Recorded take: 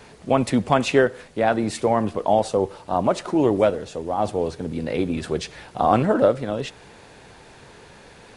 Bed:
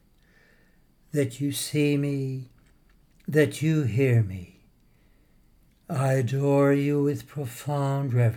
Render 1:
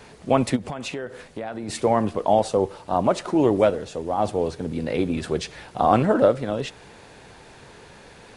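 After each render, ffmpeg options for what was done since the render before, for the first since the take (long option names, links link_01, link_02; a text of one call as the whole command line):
ffmpeg -i in.wav -filter_complex "[0:a]asplit=3[link_01][link_02][link_03];[link_01]afade=type=out:start_time=0.55:duration=0.02[link_04];[link_02]acompressor=threshold=-27dB:ratio=10:attack=3.2:release=140:knee=1:detection=peak,afade=type=in:start_time=0.55:duration=0.02,afade=type=out:start_time=1.68:duration=0.02[link_05];[link_03]afade=type=in:start_time=1.68:duration=0.02[link_06];[link_04][link_05][link_06]amix=inputs=3:normalize=0" out.wav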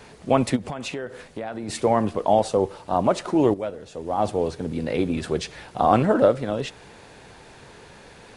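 ffmpeg -i in.wav -filter_complex "[0:a]asplit=2[link_01][link_02];[link_01]atrim=end=3.54,asetpts=PTS-STARTPTS,afade=type=out:start_time=3.536:duration=0.004:curve=hsin:silence=0.251189[link_03];[link_02]atrim=start=3.54,asetpts=PTS-STARTPTS,afade=type=in:duration=0.62:curve=qua:silence=0.251189[link_04];[link_03][link_04]concat=n=2:v=0:a=1" out.wav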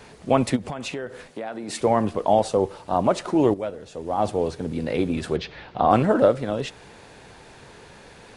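ffmpeg -i in.wav -filter_complex "[0:a]asettb=1/sr,asplit=3[link_01][link_02][link_03];[link_01]atrim=end=1.304[link_04];[link_02]atrim=start=1.3:end=1.81,asetpts=PTS-STARTPTS,afade=type=in:duration=0.004:curve=qsin,afade=type=out:start_time=0.506:duration=0.004:curve=qsin,highpass=190[link_05];[link_03]atrim=start=1.806[link_06];[link_04][link_05]acrossfade=duration=0.004:curve1=hsin:curve2=qsin[link_07];[link_07][link_06]acrossfade=duration=0.004:curve1=qsin:curve2=hsin,asettb=1/sr,asplit=3[link_08][link_09][link_10];[link_08]atrim=end=5.364[link_11];[link_09]atrim=start=5.36:end=5.91,asetpts=PTS-STARTPTS,afade=type=in:duration=0.004:curve=qsin,afade=type=out:start_time=0.546:duration=0.004:curve=qsin,lowpass=frequency=4400:width=0.5412,lowpass=frequency=4400:width=1.3066[link_12];[link_10]atrim=start=5.906[link_13];[link_11][link_12]acrossfade=duration=0.004:curve1=hsin:curve2=qsin[link_14];[link_14][link_13]acrossfade=duration=0.004:curve1=qsin:curve2=hsin" out.wav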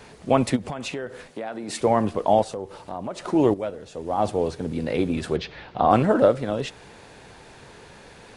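ffmpeg -i in.wav -filter_complex "[0:a]asplit=3[link_01][link_02][link_03];[link_01]afade=type=out:start_time=2.43:duration=0.02[link_04];[link_02]acompressor=threshold=-33dB:ratio=2.5:attack=3.2:release=140:knee=1:detection=peak,afade=type=in:start_time=2.43:duration=0.02,afade=type=out:start_time=3.22:duration=0.02[link_05];[link_03]afade=type=in:start_time=3.22:duration=0.02[link_06];[link_04][link_05][link_06]amix=inputs=3:normalize=0" out.wav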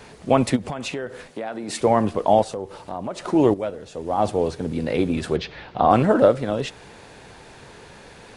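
ffmpeg -i in.wav -af "volume=2dB,alimiter=limit=-3dB:level=0:latency=1" out.wav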